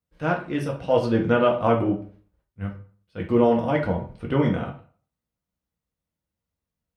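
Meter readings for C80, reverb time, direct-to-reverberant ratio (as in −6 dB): 14.0 dB, 0.45 s, −1.0 dB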